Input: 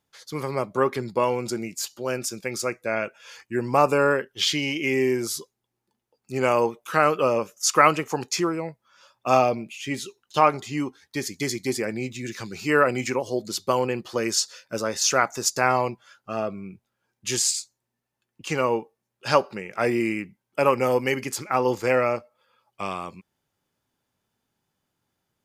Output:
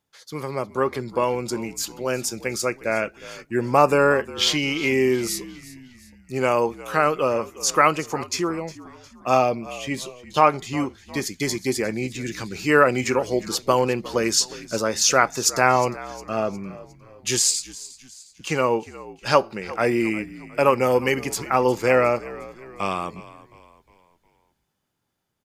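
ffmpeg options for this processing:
-filter_complex "[0:a]dynaudnorm=f=320:g=11:m=3.76,asplit=2[s0][s1];[s1]asplit=4[s2][s3][s4][s5];[s2]adelay=358,afreqshift=-60,volume=0.126[s6];[s3]adelay=716,afreqshift=-120,volume=0.0569[s7];[s4]adelay=1074,afreqshift=-180,volume=0.0254[s8];[s5]adelay=1432,afreqshift=-240,volume=0.0115[s9];[s6][s7][s8][s9]amix=inputs=4:normalize=0[s10];[s0][s10]amix=inputs=2:normalize=0,volume=0.891"

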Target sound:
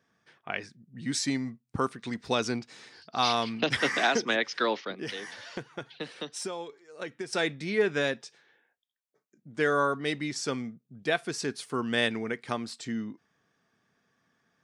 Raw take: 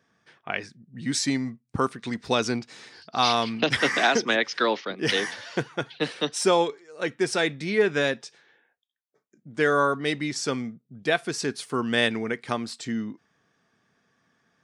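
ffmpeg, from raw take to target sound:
-filter_complex "[0:a]asettb=1/sr,asplit=3[s0][s1][s2];[s0]atrim=end=4.944[s3];[s1]atrim=start=4.94:end=7.33,asetpts=PTS-STARTPTS,afade=t=in:d=0.004:c=qsin,afade=t=out:st=2.386:d=0.004:c=qsin,acompressor=threshold=0.0316:ratio=6[s4];[s2]atrim=start=7.326[s5];[s3][s4]acrossfade=d=0.004:c1=hsin:c2=qsin[s6];[s6][s5]acrossfade=d=0.004:c1=qsin:c2=hsin,volume=0.631"

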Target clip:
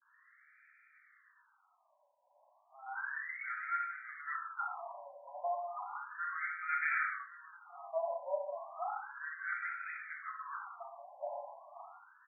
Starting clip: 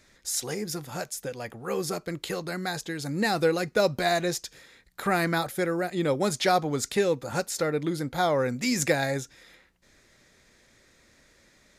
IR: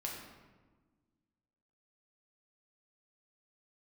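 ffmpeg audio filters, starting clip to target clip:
-filter_complex "[0:a]areverse,asplit=2[s0][s1];[s1]adelay=1069,lowpass=f=2000:p=1,volume=0.15,asplit=2[s2][s3];[s3]adelay=1069,lowpass=f=2000:p=1,volume=0.43,asplit=2[s4][s5];[s5]adelay=1069,lowpass=f=2000:p=1,volume=0.43,asplit=2[s6][s7];[s7]adelay=1069,lowpass=f=2000:p=1,volume=0.43[s8];[s0][s2][s4][s6][s8]amix=inputs=5:normalize=0,acrossover=split=1300[s9][s10];[s9]acompressor=threshold=0.02:ratio=6[s11];[s11][s10]amix=inputs=2:normalize=0[s12];[1:a]atrim=start_sample=2205,afade=t=out:st=0.27:d=0.01,atrim=end_sample=12348[s13];[s12][s13]afir=irnorm=-1:irlink=0,asetrate=42336,aresample=44100,afftfilt=real='re*between(b*sr/1024,750*pow(1800/750,0.5+0.5*sin(2*PI*0.33*pts/sr))/1.41,750*pow(1800/750,0.5+0.5*sin(2*PI*0.33*pts/sr))*1.41)':imag='im*between(b*sr/1024,750*pow(1800/750,0.5+0.5*sin(2*PI*0.33*pts/sr))/1.41,750*pow(1800/750,0.5+0.5*sin(2*PI*0.33*pts/sr))*1.41)':win_size=1024:overlap=0.75"

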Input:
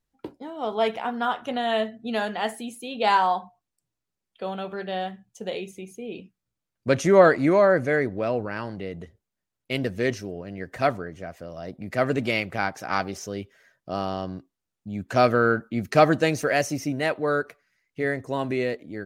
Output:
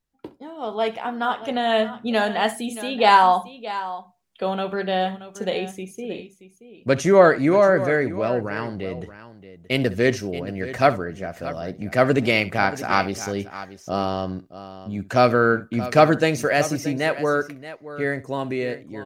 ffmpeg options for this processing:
-af "dynaudnorm=f=350:g=9:m=3.76,aecho=1:1:65|627:0.126|0.188,volume=0.891"

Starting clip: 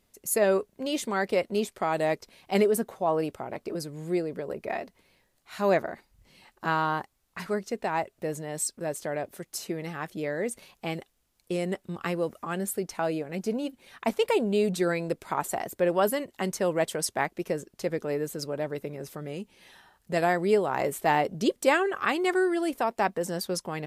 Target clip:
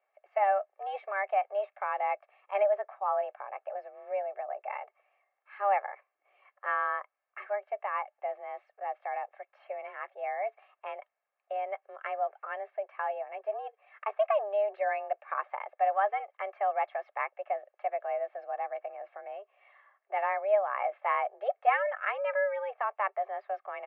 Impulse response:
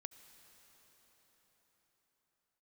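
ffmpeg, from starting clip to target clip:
-af "aecho=1:1:2:0.56,highpass=f=290:t=q:w=0.5412,highpass=f=290:t=q:w=1.307,lowpass=f=2200:t=q:w=0.5176,lowpass=f=2200:t=q:w=0.7071,lowpass=f=2200:t=q:w=1.932,afreqshift=200,volume=0.562"

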